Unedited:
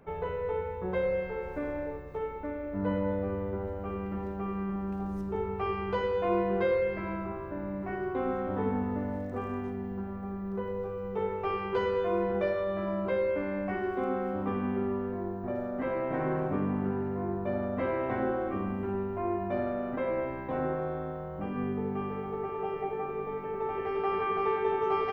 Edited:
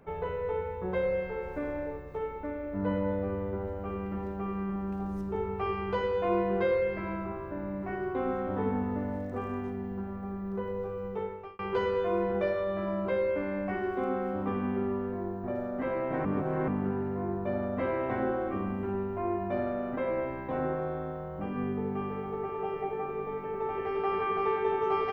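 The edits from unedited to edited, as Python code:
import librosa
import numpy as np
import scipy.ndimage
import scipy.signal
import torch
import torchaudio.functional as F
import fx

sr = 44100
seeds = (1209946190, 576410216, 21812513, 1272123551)

y = fx.edit(x, sr, fx.fade_out_span(start_s=11.05, length_s=0.54),
    fx.reverse_span(start_s=16.25, length_s=0.43), tone=tone)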